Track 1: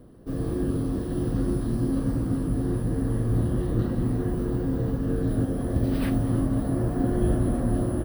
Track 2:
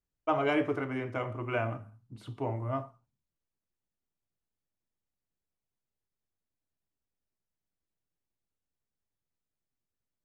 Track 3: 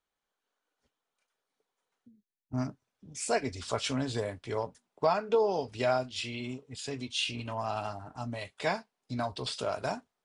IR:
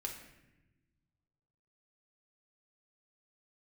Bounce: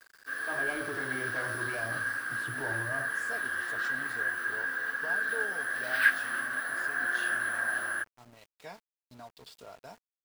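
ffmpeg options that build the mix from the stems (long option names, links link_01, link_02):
-filter_complex "[0:a]highpass=frequency=1600:width_type=q:width=16,volume=2.5dB[link_01];[1:a]lowshelf=frequency=120:gain=-11,dynaudnorm=framelen=240:gausssize=3:maxgain=13.5dB,asoftclip=type=tanh:threshold=-12.5dB,adelay=200,volume=-10dB[link_02];[2:a]aecho=1:1:4.3:0.34,volume=-15.5dB[link_03];[link_02][link_03]amix=inputs=2:normalize=0,equalizer=frequency=240:width=4.7:gain=-4.5,alimiter=level_in=8dB:limit=-24dB:level=0:latency=1,volume=-8dB,volume=0dB[link_04];[link_01][link_04]amix=inputs=2:normalize=0,aeval=exprs='val(0)*gte(abs(val(0)),0.00224)':channel_layout=same"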